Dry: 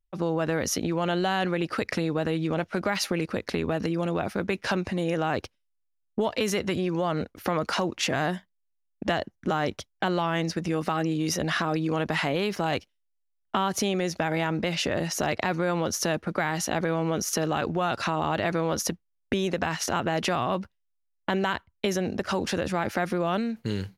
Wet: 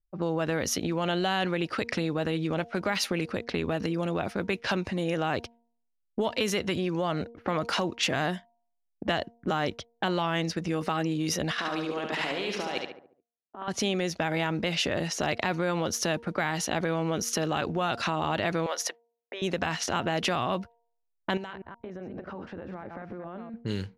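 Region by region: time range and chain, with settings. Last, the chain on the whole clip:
11.51–13.68 HPF 280 Hz + negative-ratio compressor -30 dBFS, ratio -0.5 + feedback echo 71 ms, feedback 49%, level -4 dB
18.66–19.42 HPF 530 Hz 24 dB/oct + bell 1900 Hz +6 dB 0.33 oct
21.37–23.54 reverse delay 0.125 s, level -7.5 dB + compressor 16:1, threshold -32 dBFS
whole clip: low-pass opened by the level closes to 390 Hz, open at -24.5 dBFS; de-hum 234 Hz, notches 4; dynamic EQ 3200 Hz, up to +4 dB, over -42 dBFS, Q 1.4; gain -2 dB

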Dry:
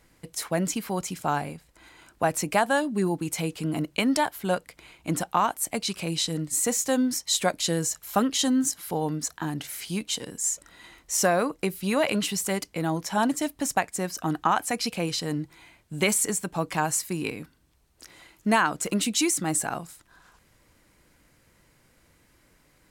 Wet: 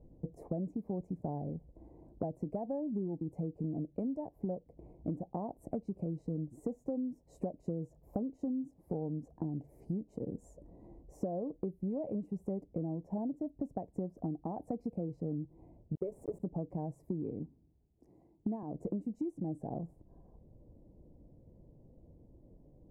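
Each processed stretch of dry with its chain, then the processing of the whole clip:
15.95–16.4 bell 2700 Hz +14.5 dB 0.25 oct + fixed phaser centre 830 Hz, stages 6 + sample gate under -31 dBFS
17.39–18.63 HPF 120 Hz 6 dB/oct + bell 550 Hz -8 dB 0.52 oct + three-band expander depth 40%
whole clip: inverse Chebyshev low-pass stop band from 1300 Hz, stop band 40 dB; low shelf 330 Hz +5 dB; compressor 12:1, threshold -35 dBFS; gain +1.5 dB

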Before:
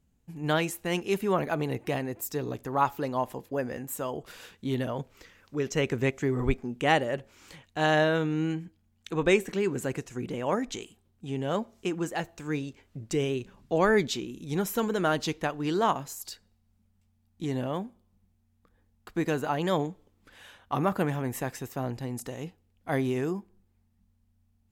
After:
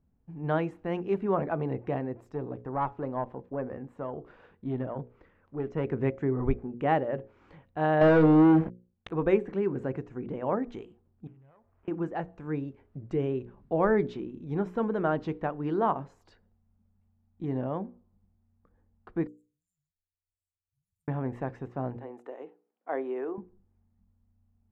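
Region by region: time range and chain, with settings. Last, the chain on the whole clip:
2.32–5.85 high shelf 4400 Hz -7.5 dB + tube stage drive 18 dB, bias 0.45
8.01–9.11 notch 170 Hz, Q 5.2 + sample leveller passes 5
11.27–11.88 EQ curve 120 Hz 0 dB, 190 Hz -24 dB, 7100 Hz +1 dB + compressor 4:1, threshold -57 dBFS + decimation joined by straight lines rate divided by 8×
19.27–21.08 Chebyshev band-stop 110–7400 Hz, order 5 + pre-emphasis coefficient 0.97
21.96–23.38 HPF 350 Hz 24 dB/oct + bell 4900 Hz -13.5 dB 0.55 oct
whole clip: LPF 1200 Hz 12 dB/oct; de-esser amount 95%; notches 60/120/180/240/300/360/420/480/540 Hz

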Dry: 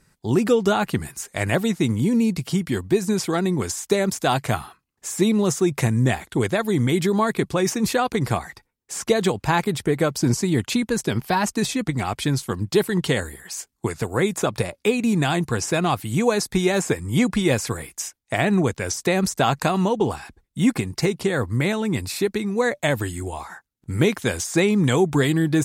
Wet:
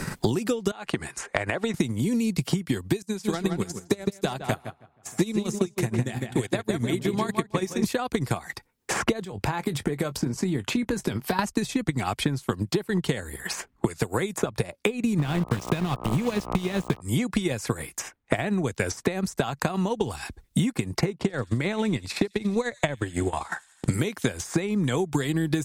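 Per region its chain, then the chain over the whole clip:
0.71–1.74 LPF 9800 Hz 24 dB/oct + tone controls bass -13 dB, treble -6 dB + compressor 5:1, threshold -28 dBFS
3.02–7.84 darkening echo 0.158 s, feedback 48%, low-pass 3000 Hz, level -4.5 dB + upward expander 2.5:1, over -35 dBFS
9.24–11.39 compressor, threshold -31 dBFS + doubler 21 ms -12.5 dB
15.18–17 sample gate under -24 dBFS + tone controls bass +13 dB, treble -10 dB + buzz 60 Hz, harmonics 21, -30 dBFS -1 dB/oct
21.18–23.94 air absorption 55 m + transient shaper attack +4 dB, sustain -8 dB + thin delay 87 ms, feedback 60%, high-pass 4800 Hz, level -9 dB
whole clip: compressor 6:1, threshold -25 dBFS; transient shaper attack +6 dB, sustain -6 dB; three-band squash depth 100%

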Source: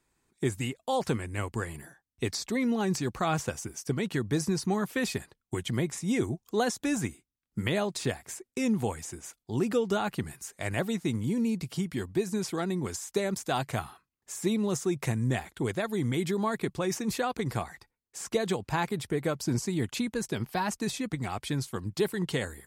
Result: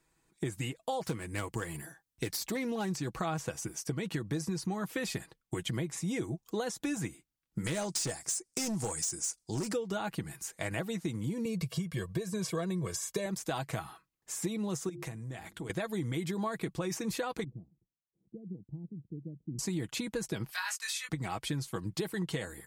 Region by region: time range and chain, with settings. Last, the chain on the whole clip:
1.04–2.92 self-modulated delay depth 0.093 ms + high shelf 5900 Hz +6 dB
7.64–9.73 band shelf 6800 Hz +15.5 dB 1.3 oct + overloaded stage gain 24 dB + Doppler distortion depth 0.12 ms
11.45–13.26 HPF 170 Hz 6 dB/oct + low shelf 230 Hz +10 dB + comb 1.8 ms, depth 81%
14.89–15.7 notches 50/100/150/200/250/300/350 Hz + compressor 8:1, threshold -38 dBFS
17.44–19.59 inverse Chebyshev low-pass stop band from 1500 Hz, stop band 80 dB + tilt +4 dB/oct
20.51–21.09 HPF 1300 Hz 24 dB/oct + de-esser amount 50% + doubler 22 ms -2 dB
whole clip: comb 6.2 ms, depth 44%; compressor, threshold -31 dBFS

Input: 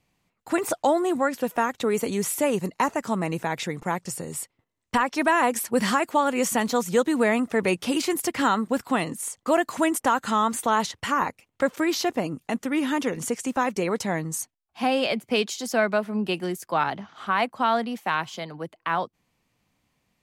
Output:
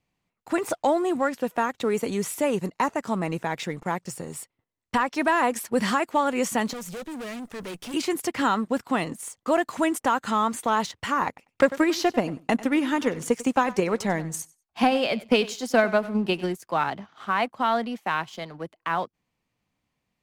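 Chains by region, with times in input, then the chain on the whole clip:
6.73–7.94 tube stage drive 32 dB, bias 0.45 + companded quantiser 8-bit + high shelf 6700 Hz +7.5 dB
11.27–16.53 transient shaper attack +8 dB, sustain +1 dB + feedback echo 96 ms, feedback 18%, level -17.5 dB
whole clip: high shelf 7800 Hz -6.5 dB; sample leveller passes 1; gain -4.5 dB

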